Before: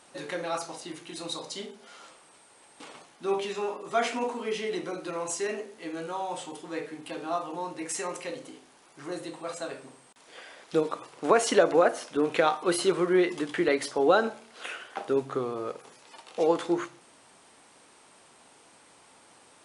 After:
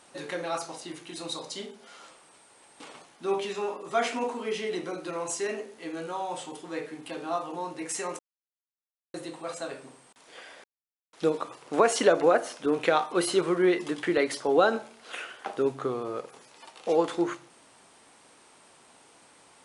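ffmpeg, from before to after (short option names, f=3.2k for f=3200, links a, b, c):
-filter_complex "[0:a]asplit=4[a][b][c][d];[a]atrim=end=8.19,asetpts=PTS-STARTPTS,afade=t=out:st=8.186:d=0.004:c=hsin[e];[b]atrim=start=8.19:end=9.14,asetpts=PTS-STARTPTS,volume=0[f];[c]atrim=start=9.14:end=10.64,asetpts=PTS-STARTPTS,afade=t=in:d=0.004:c=hsin,afade=t=out:st=1.496:d=0.004:c=hsin,apad=pad_dur=0.49[g];[d]atrim=start=10.64,asetpts=PTS-STARTPTS,afade=t=in:d=0.004:c=hsin[h];[e][f][g][h]concat=n=4:v=0:a=1"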